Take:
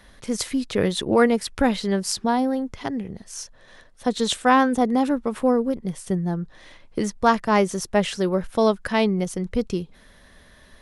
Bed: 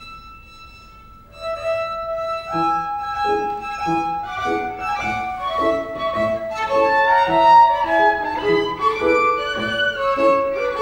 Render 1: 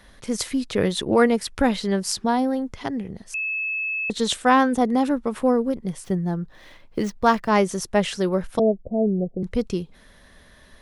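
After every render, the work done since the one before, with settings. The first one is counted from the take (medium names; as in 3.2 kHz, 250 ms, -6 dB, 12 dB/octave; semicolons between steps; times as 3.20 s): 3.34–4.10 s: bleep 2.6 kHz -23.5 dBFS; 6.04–7.49 s: median filter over 5 samples; 8.59–9.43 s: steep low-pass 710 Hz 72 dB/octave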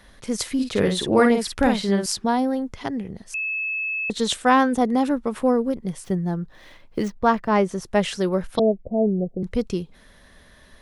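0.54–2.06 s: doubling 50 ms -4.5 dB; 7.08–7.86 s: treble shelf 3.3 kHz -11 dB; 8.55–9.09 s: resonant low-pass 4.5 kHz -> 1.1 kHz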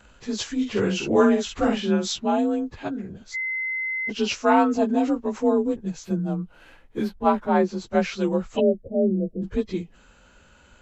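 frequency axis rescaled in octaves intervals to 90%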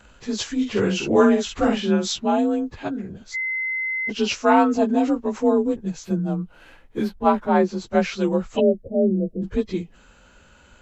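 trim +2 dB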